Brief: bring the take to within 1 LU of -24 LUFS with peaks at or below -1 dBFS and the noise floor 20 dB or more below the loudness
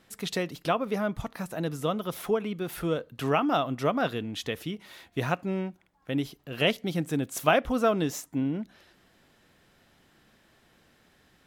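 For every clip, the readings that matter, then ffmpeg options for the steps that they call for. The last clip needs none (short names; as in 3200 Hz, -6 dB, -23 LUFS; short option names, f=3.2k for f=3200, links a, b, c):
loudness -29.5 LUFS; peak -7.0 dBFS; loudness target -24.0 LUFS
-> -af "volume=5.5dB"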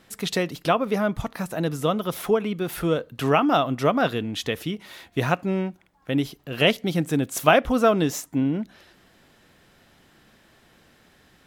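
loudness -24.0 LUFS; peak -1.5 dBFS; noise floor -58 dBFS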